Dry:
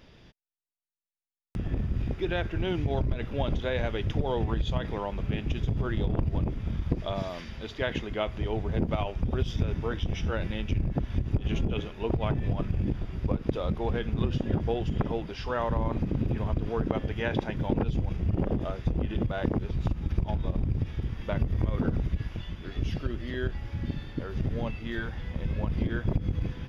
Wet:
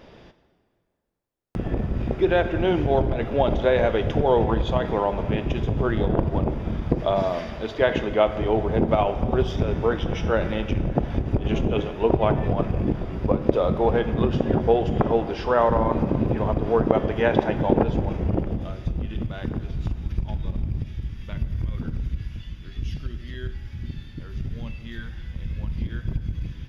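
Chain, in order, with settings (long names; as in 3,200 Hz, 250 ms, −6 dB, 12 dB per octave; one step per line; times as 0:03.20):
parametric band 620 Hz +10.5 dB 2.7 octaves, from 0:18.39 −7 dB, from 0:20.82 −13.5 dB
dense smooth reverb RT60 2.1 s, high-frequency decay 0.75×, DRR 10 dB
level +1.5 dB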